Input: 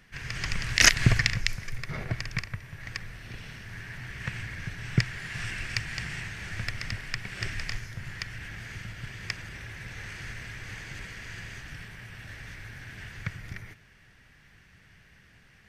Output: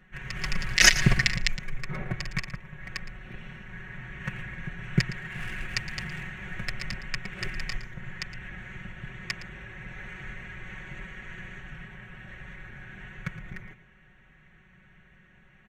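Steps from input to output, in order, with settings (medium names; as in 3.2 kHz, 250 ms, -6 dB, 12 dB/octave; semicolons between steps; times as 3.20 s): local Wiener filter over 9 samples; comb 5.4 ms, depth 81%; delay 114 ms -14.5 dB; trim -1 dB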